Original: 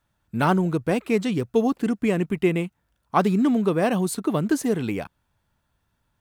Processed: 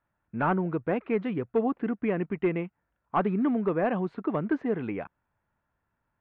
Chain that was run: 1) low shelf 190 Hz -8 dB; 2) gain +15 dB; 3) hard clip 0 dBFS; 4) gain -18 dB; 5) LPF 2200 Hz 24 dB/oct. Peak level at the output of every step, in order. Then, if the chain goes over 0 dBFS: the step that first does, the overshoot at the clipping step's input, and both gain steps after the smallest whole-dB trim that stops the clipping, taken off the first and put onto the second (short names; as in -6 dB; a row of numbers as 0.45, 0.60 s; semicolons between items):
-6.5, +8.5, 0.0, -18.0, -16.5 dBFS; step 2, 8.5 dB; step 2 +6 dB, step 4 -9 dB